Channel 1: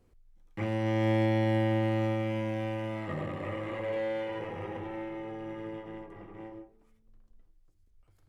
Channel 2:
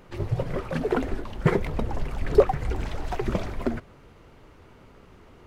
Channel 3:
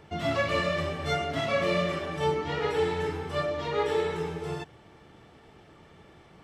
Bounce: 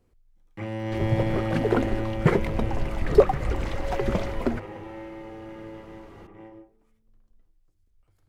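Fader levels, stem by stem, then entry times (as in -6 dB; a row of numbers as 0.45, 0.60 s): -1.0 dB, +1.0 dB, off; 0.00 s, 0.80 s, off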